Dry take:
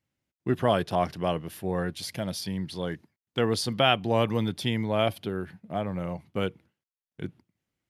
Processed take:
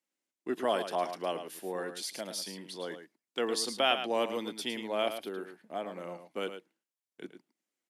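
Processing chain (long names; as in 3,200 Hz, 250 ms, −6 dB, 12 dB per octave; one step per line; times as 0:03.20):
high-pass filter 260 Hz 24 dB per octave
parametric band 7,800 Hz +7 dB 1.2 octaves
on a send: single-tap delay 109 ms −9.5 dB
on the sum: level −5.5 dB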